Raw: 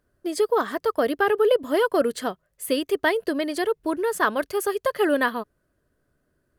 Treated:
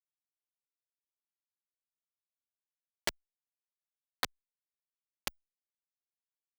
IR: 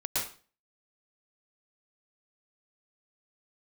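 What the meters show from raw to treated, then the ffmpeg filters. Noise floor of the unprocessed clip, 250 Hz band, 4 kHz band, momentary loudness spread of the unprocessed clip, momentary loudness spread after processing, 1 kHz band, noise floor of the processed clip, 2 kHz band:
−73 dBFS, −32.5 dB, −11.0 dB, 9 LU, 4 LU, −23.5 dB, below −85 dBFS, −20.0 dB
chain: -filter_complex "[0:a]acompressor=threshold=-30dB:ratio=12,firequalizer=gain_entry='entry(850,0);entry(2200,-5);entry(3900,-11);entry(12000,-14)':delay=0.05:min_phase=1,afftdn=noise_reduction=18:noise_floor=-46,aemphasis=mode=production:type=riaa,afreqshift=71,highpass=frequency=500:poles=1,bandreject=frequency=640:width=12,asplit=2[link_01][link_02];[link_02]adelay=29,volume=-2dB[link_03];[link_01][link_03]amix=inputs=2:normalize=0,acrusher=bits=3:mix=0:aa=0.000001,asplit=2[link_04][link_05];[link_05]adelay=3.2,afreqshift=0.4[link_06];[link_04][link_06]amix=inputs=2:normalize=1,volume=9dB"

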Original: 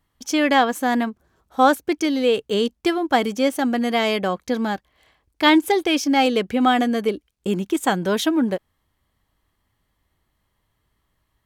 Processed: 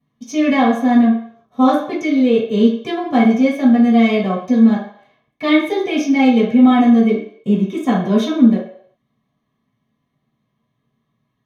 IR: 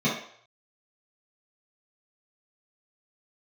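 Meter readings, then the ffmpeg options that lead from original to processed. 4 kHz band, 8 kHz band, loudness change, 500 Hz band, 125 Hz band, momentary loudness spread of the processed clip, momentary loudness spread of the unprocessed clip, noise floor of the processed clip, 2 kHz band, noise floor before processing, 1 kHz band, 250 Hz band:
−4.0 dB, can't be measured, +5.5 dB, +2.5 dB, +9.0 dB, 9 LU, 8 LU, −71 dBFS, −0.5 dB, −72 dBFS, 0.0 dB, +9.0 dB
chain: -filter_complex "[1:a]atrim=start_sample=2205[link_01];[0:a][link_01]afir=irnorm=-1:irlink=0,volume=-13.5dB"

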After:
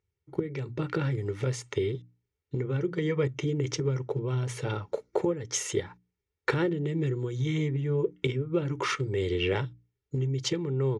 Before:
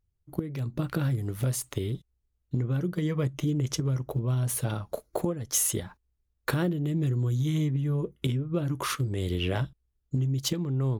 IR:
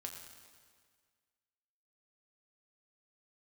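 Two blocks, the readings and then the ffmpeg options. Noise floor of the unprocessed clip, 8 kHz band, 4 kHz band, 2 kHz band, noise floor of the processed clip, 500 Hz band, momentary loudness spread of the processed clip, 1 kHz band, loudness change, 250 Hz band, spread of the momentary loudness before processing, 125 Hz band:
−77 dBFS, −6.0 dB, 0.0 dB, +3.5 dB, −85 dBFS, +5.5 dB, 6 LU, +1.0 dB, −1.0 dB, −1.5 dB, 8 LU, −3.0 dB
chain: -af "highpass=110,equalizer=frequency=410:width_type=q:width=4:gain=6,equalizer=frequency=630:width_type=q:width=4:gain=-3,equalizer=frequency=2100:width_type=q:width=4:gain=8,equalizer=frequency=4300:width_type=q:width=4:gain=-4,lowpass=frequency=6400:width=0.5412,lowpass=frequency=6400:width=1.3066,bandreject=frequency=60:width_type=h:width=6,bandreject=frequency=120:width_type=h:width=6,bandreject=frequency=180:width_type=h:width=6,bandreject=frequency=240:width_type=h:width=6,bandreject=frequency=300:width_type=h:width=6,aecho=1:1:2.2:0.5"

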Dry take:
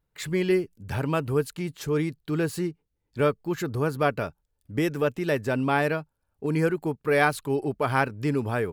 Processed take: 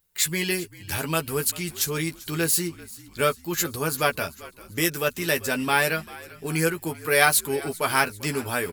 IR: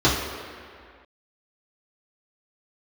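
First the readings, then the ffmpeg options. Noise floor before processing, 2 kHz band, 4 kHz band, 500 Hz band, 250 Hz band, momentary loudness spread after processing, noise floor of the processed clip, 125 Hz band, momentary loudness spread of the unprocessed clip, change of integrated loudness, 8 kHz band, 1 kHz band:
−78 dBFS, +5.0 dB, +11.0 dB, −1.5 dB, −3.0 dB, 10 LU, −50 dBFS, −3.0 dB, 9 LU, +2.5 dB, +17.5 dB, +1.5 dB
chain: -filter_complex "[0:a]asplit=2[link_01][link_02];[link_02]adelay=12,volume=-5.5dB[link_03];[link_01][link_03]amix=inputs=2:normalize=0,asplit=2[link_04][link_05];[link_05]asplit=5[link_06][link_07][link_08][link_09][link_10];[link_06]adelay=392,afreqshift=-52,volume=-19.5dB[link_11];[link_07]adelay=784,afreqshift=-104,volume=-24.5dB[link_12];[link_08]adelay=1176,afreqshift=-156,volume=-29.6dB[link_13];[link_09]adelay=1568,afreqshift=-208,volume=-34.6dB[link_14];[link_10]adelay=1960,afreqshift=-260,volume=-39.6dB[link_15];[link_11][link_12][link_13][link_14][link_15]amix=inputs=5:normalize=0[link_16];[link_04][link_16]amix=inputs=2:normalize=0,crystalizer=i=9.5:c=0,volume=-4.5dB"

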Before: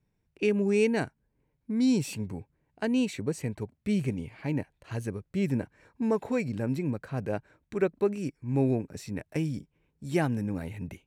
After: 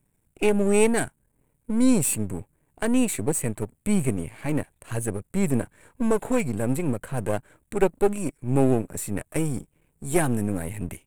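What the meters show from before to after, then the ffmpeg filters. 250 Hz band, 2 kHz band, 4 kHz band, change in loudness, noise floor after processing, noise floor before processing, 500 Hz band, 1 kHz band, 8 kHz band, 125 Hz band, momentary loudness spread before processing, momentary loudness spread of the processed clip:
+4.0 dB, +4.5 dB, +2.5 dB, +5.0 dB, −71 dBFS, −77 dBFS, +5.0 dB, +7.5 dB, +16.5 dB, +3.5 dB, 12 LU, 11 LU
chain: -af "aeval=exprs='if(lt(val(0),0),0.251*val(0),val(0))':channel_layout=same,highshelf=frequency=6800:width_type=q:width=3:gain=9.5,volume=8.5dB"

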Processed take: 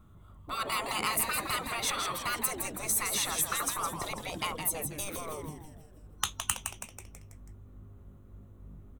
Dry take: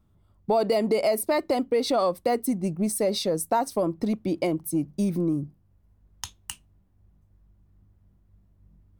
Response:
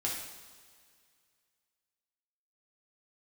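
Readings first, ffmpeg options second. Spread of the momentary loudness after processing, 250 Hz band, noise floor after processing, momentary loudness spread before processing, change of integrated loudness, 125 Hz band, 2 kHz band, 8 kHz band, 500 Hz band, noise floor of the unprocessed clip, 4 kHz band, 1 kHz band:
13 LU, −17.5 dB, −54 dBFS, 15 LU, −6.0 dB, −10.0 dB, +4.0 dB, +5.0 dB, −17.5 dB, −63 dBFS, +1.0 dB, −4.5 dB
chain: -filter_complex "[0:a]afftfilt=real='re*lt(hypot(re,im),0.0631)':imag='im*lt(hypot(re,im),0.0631)':win_size=1024:overlap=0.75,superequalizer=10b=2.24:14b=0.355,asplit=2[link_01][link_02];[link_02]asplit=6[link_03][link_04][link_05][link_06][link_07][link_08];[link_03]adelay=163,afreqshift=-150,volume=-7dB[link_09];[link_04]adelay=326,afreqshift=-300,volume=-12.8dB[link_10];[link_05]adelay=489,afreqshift=-450,volume=-18.7dB[link_11];[link_06]adelay=652,afreqshift=-600,volume=-24.5dB[link_12];[link_07]adelay=815,afreqshift=-750,volume=-30.4dB[link_13];[link_08]adelay=978,afreqshift=-900,volume=-36.2dB[link_14];[link_09][link_10][link_11][link_12][link_13][link_14]amix=inputs=6:normalize=0[link_15];[link_01][link_15]amix=inputs=2:normalize=0,volume=7.5dB"

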